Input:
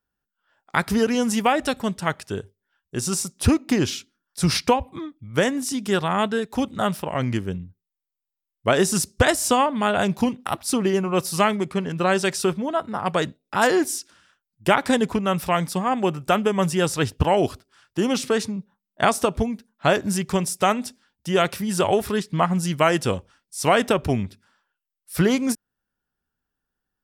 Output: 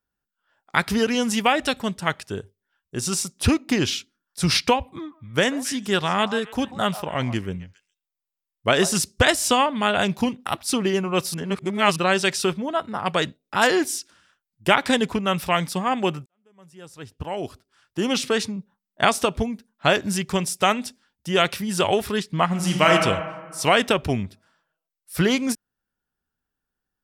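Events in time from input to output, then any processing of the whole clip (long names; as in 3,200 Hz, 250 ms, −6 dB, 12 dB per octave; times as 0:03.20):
0:04.84–0:08.96: echo through a band-pass that steps 137 ms, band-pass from 830 Hz, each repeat 1.4 octaves, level −10.5 dB
0:11.34–0:11.96: reverse
0:16.26–0:18.10: fade in quadratic
0:22.46–0:22.90: thrown reverb, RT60 1.7 s, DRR 0.5 dB
whole clip: dynamic equaliser 3,100 Hz, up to +7 dB, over −37 dBFS, Q 0.75; level −1.5 dB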